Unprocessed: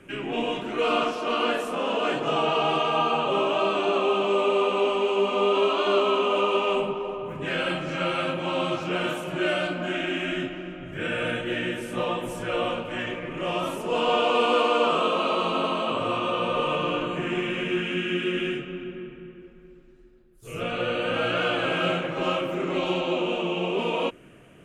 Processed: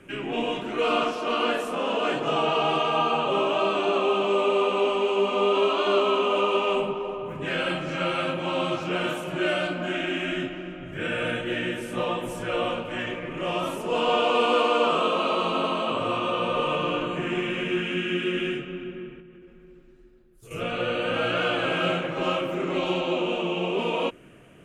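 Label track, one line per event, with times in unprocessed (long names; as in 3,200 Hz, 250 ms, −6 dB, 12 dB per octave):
19.200000	20.510000	downward compressor, threshold −44 dBFS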